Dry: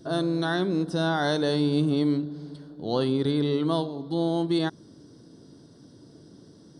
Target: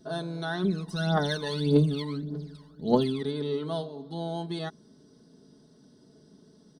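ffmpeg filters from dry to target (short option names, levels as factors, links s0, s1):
-filter_complex "[0:a]aecho=1:1:4.7:0.7,asplit=3[s0][s1][s2];[s0]afade=t=out:st=0.63:d=0.02[s3];[s1]aphaser=in_gain=1:out_gain=1:delay=1.1:decay=0.78:speed=1.7:type=triangular,afade=t=in:st=0.63:d=0.02,afade=t=out:st=3.21:d=0.02[s4];[s2]afade=t=in:st=3.21:d=0.02[s5];[s3][s4][s5]amix=inputs=3:normalize=0,volume=0.447"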